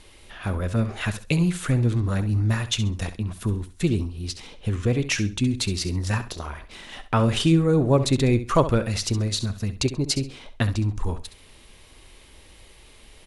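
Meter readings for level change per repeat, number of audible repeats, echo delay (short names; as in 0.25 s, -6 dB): -13.0 dB, 2, 67 ms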